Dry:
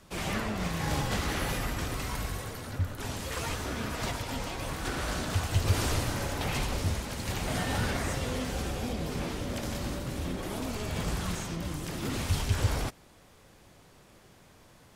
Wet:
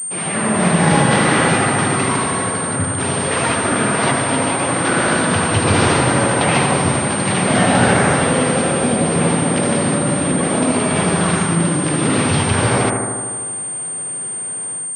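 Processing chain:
high-pass filter 130 Hz 24 dB per octave
on a send: bucket-brigade delay 77 ms, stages 1,024, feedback 75%, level −4.5 dB
on the sum: automatic gain control gain up to 9 dB
switching amplifier with a slow clock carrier 8,700 Hz
level +7.5 dB

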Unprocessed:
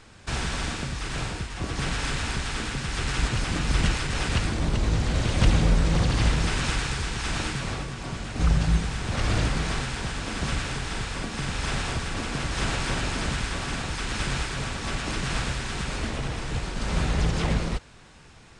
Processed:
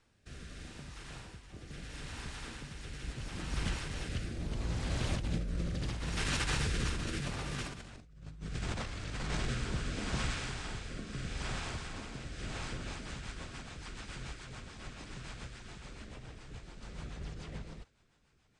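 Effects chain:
source passing by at 0:07.92, 16 m/s, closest 1.3 metres
compressor whose output falls as the input rises −53 dBFS, ratio −1
rotating-speaker cabinet horn 0.75 Hz, later 7 Hz, at 0:12.34
level +15.5 dB

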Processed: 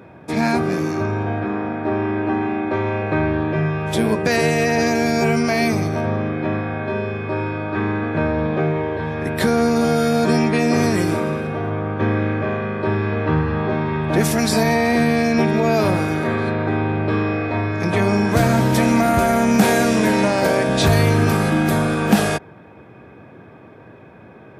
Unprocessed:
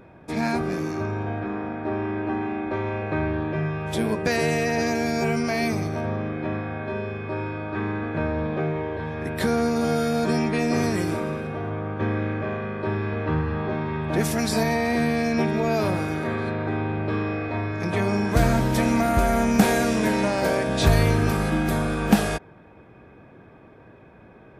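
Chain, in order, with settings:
high-pass filter 79 Hz 24 dB per octave
in parallel at +3 dB: brickwall limiter −13.5 dBFS, peak gain reduction 9.5 dB
on the sum: level −1.5 dB

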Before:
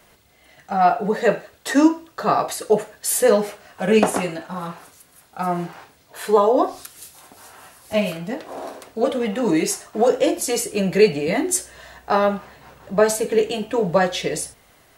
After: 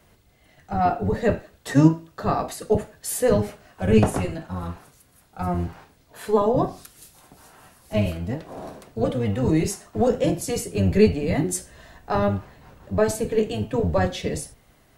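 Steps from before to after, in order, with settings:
sub-octave generator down 1 octave, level 0 dB
low-shelf EQ 390 Hz +7 dB
level −7 dB

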